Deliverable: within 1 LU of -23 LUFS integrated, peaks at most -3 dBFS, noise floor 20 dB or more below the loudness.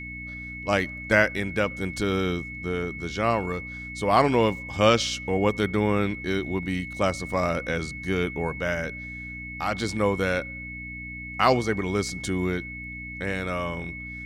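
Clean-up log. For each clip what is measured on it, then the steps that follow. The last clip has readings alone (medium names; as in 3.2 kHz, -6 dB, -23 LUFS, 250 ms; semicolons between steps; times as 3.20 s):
hum 60 Hz; highest harmonic 300 Hz; hum level -39 dBFS; steady tone 2.2 kHz; tone level -36 dBFS; loudness -26.5 LUFS; peak level -5.0 dBFS; loudness target -23.0 LUFS
-> de-hum 60 Hz, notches 5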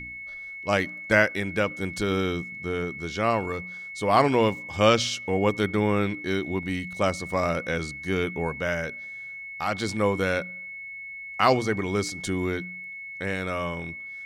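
hum not found; steady tone 2.2 kHz; tone level -36 dBFS
-> band-stop 2.2 kHz, Q 30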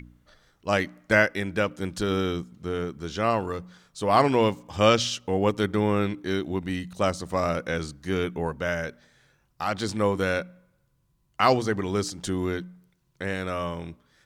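steady tone not found; loudness -26.5 LUFS; peak level -5.5 dBFS; loudness target -23.0 LUFS
-> trim +3.5 dB; peak limiter -3 dBFS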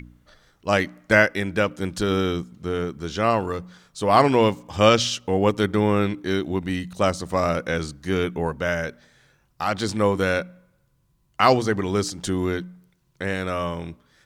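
loudness -23.0 LUFS; peak level -3.0 dBFS; noise floor -65 dBFS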